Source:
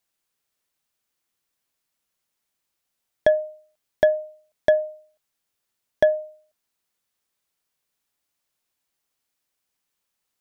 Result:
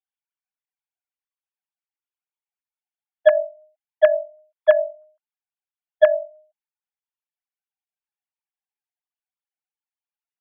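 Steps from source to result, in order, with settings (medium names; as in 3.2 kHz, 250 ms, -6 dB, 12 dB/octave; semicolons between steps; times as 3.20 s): formants replaced by sine waves; trim +3.5 dB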